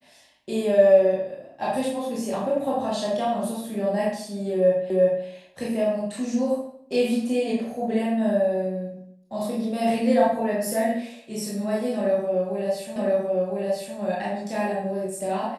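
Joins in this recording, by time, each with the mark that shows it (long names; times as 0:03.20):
0:04.90: the same again, the last 0.36 s
0:12.96: the same again, the last 1.01 s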